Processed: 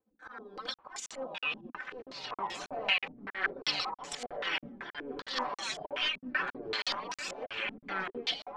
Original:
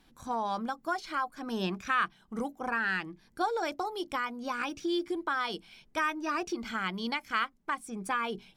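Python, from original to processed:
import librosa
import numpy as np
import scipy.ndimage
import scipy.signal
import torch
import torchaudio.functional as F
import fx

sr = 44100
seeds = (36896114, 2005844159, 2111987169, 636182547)

p1 = np.minimum(x, 2.0 * 10.0 ** (-23.5 / 20.0) - x)
p2 = fx.spec_gate(p1, sr, threshold_db=-15, keep='weak')
p3 = fx.low_shelf(p2, sr, hz=350.0, db=-9.0)
p4 = p3 + 0.89 * np.pad(p3, (int(3.9 * sr / 1000.0), 0))[:len(p3)]
p5 = fx.auto_swell(p4, sr, attack_ms=115.0)
p6 = fx.over_compress(p5, sr, threshold_db=-38.0, ratio=-1.0)
p7 = p5 + (p6 * 10.0 ** (1.0 / 20.0))
p8 = fx.echo_pitch(p7, sr, ms=779, semitones=-5, count=2, db_per_echo=-3.0)
p9 = p8 + fx.echo_single(p8, sr, ms=862, db=-5.5, dry=0)
p10 = fx.buffer_crackle(p9, sr, first_s=0.74, period_s=0.32, block=2048, kind='zero')
p11 = fx.filter_held_lowpass(p10, sr, hz=5.2, low_hz=240.0, high_hz=7100.0)
y = p11 * 10.0 ** (-1.5 / 20.0)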